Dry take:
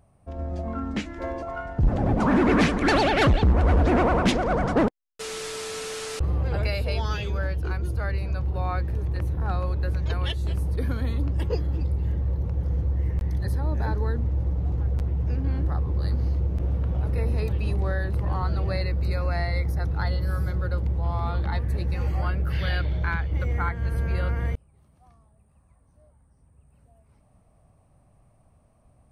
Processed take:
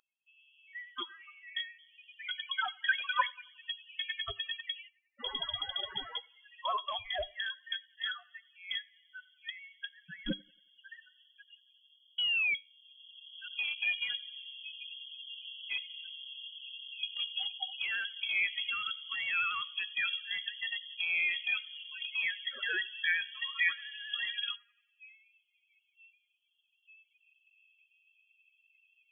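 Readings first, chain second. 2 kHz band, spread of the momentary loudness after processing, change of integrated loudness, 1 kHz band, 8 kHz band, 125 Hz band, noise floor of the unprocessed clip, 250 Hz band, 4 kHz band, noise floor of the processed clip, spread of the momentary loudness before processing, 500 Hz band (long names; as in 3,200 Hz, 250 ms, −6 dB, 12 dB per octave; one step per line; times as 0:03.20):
0.0 dB, 14 LU, −9.0 dB, −11.5 dB, below −35 dB, −38.5 dB, −61 dBFS, −26.0 dB, +4.5 dB, −76 dBFS, 10 LU, −22.5 dB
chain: pitch vibrato 11 Hz 46 cents
dynamic equaliser 630 Hz, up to −6 dB, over −42 dBFS, Q 2.8
spectral peaks only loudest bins 16
high-pass filter sweep 2,100 Hz → 740 Hz, 0:12.61–0:13.44
feedback echo with a band-pass in the loop 91 ms, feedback 59%, band-pass 1,100 Hz, level −22.5 dB
sound drawn into the spectrogram rise, 0:12.18–0:12.55, 330–1,100 Hz −29 dBFS
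in parallel at −10 dB: comparator with hysteresis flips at −35.5 dBFS
on the sum: low shelf with overshoot 130 Hz +14 dB, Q 1.5
tuned comb filter 100 Hz, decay 0.3 s, harmonics all, mix 30%
voice inversion scrambler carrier 3,300 Hz
level +1.5 dB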